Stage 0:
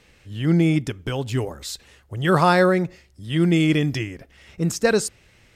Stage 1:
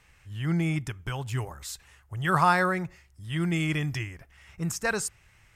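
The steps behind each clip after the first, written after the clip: graphic EQ 250/500/1000/4000 Hz -11/-10/+3/-8 dB; gain -2 dB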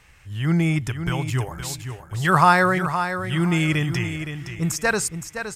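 feedback echo 0.517 s, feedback 23%, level -9 dB; gain +6.5 dB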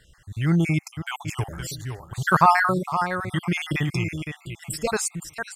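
random spectral dropouts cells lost 43%

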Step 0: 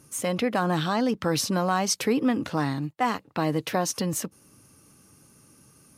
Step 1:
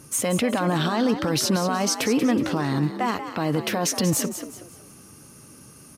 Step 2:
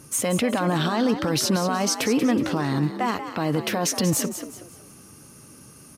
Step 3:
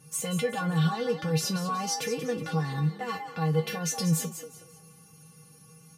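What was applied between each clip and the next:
limiter -22 dBFS, peak gain reduction 10.5 dB; frequency-shifting echo 0.185 s, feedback 37%, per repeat +60 Hz, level -10 dB; gain +8 dB
nothing audible
resonator 160 Hz, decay 0.16 s, harmonics odd, mix 100%; gain +5 dB

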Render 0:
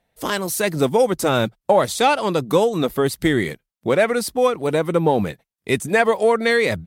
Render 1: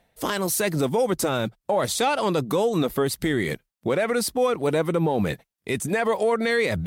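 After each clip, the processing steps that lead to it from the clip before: reverse; upward compressor, threshold -22 dBFS; reverse; limiter -14 dBFS, peak gain reduction 9.5 dB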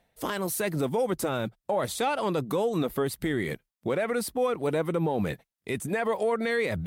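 dynamic EQ 5700 Hz, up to -6 dB, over -43 dBFS, Q 0.99; gain -4.5 dB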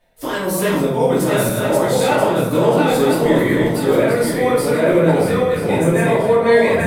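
regenerating reverse delay 0.492 s, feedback 54%, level -1 dB; shoebox room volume 150 m³, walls mixed, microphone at 2.7 m; gain -1 dB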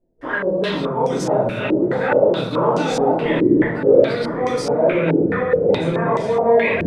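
stepped low-pass 4.7 Hz 340–6000 Hz; gain -5.5 dB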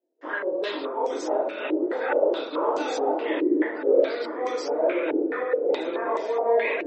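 elliptic high-pass 300 Hz, stop band 60 dB; gain -6 dB; MP3 32 kbps 44100 Hz

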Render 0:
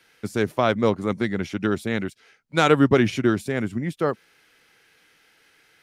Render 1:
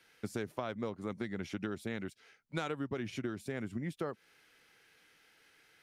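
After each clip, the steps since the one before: compressor 12:1, threshold -27 dBFS, peak gain reduction 17 dB; gain -6.5 dB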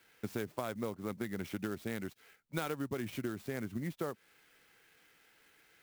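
clock jitter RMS 0.033 ms

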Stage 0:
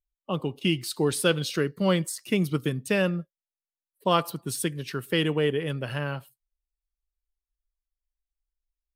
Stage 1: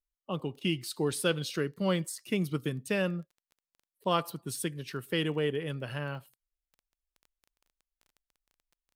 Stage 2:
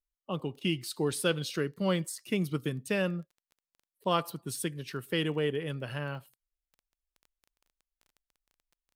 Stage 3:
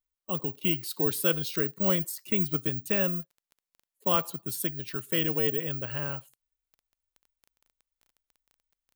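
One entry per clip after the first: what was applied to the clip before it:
crackle 13/s -41 dBFS; gain -5.5 dB
nothing audible
careless resampling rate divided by 2×, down none, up zero stuff

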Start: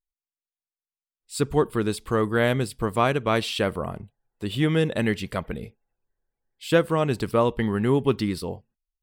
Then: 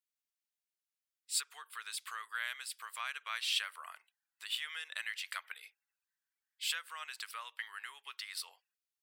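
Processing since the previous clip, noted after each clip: compressor 6:1, threshold -28 dBFS, peak gain reduction 13.5 dB; HPF 1400 Hz 24 dB/oct; gain +1 dB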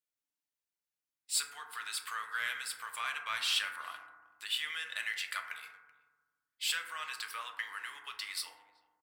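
speakerphone echo 0.38 s, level -22 dB; sample leveller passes 1; FDN reverb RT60 1.3 s, low-frequency decay 1.45×, high-frequency decay 0.25×, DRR 2.5 dB; gain -1 dB

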